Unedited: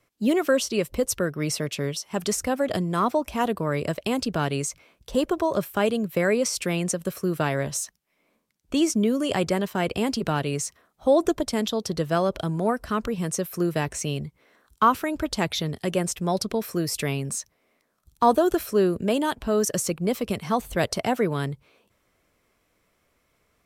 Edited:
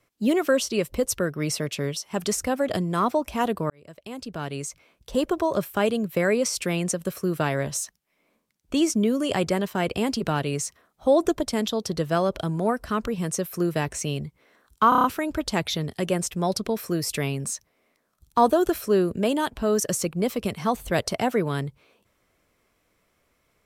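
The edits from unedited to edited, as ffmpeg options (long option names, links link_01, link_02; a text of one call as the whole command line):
ffmpeg -i in.wav -filter_complex "[0:a]asplit=7[link_01][link_02][link_03][link_04][link_05][link_06][link_07];[link_01]atrim=end=3.7,asetpts=PTS-STARTPTS,afade=type=out:start_time=3.696:duration=0.004:curve=hsin[link_08];[link_02]atrim=start=3.7:end=14.922,asetpts=PTS-STARTPTS,afade=type=in:duration=1.59[link_09];[link_03]atrim=start=14.888:end=14.922[link_10];[link_04]atrim=start=14.888:end=14.922[link_11];[link_05]atrim=start=14.888:end=14.922[link_12];[link_06]atrim=start=14.888:end=14.922[link_13];[link_07]atrim=start=14.888[link_14];[link_08][link_09]concat=n=2:v=0:a=1[link_15];[link_15][link_10]acrossfade=duration=0.004:curve1=hsin:curve2=hsin[link_16];[link_16][link_11]acrossfade=duration=0.004:curve1=hsin:curve2=hsin[link_17];[link_17][link_12]acrossfade=duration=0.004:curve1=hsin:curve2=hsin[link_18];[link_18][link_13]acrossfade=duration=0.004:curve1=hsin:curve2=hsin[link_19];[link_19][link_14]acrossfade=duration=0.004:curve1=hsin:curve2=hsin" out.wav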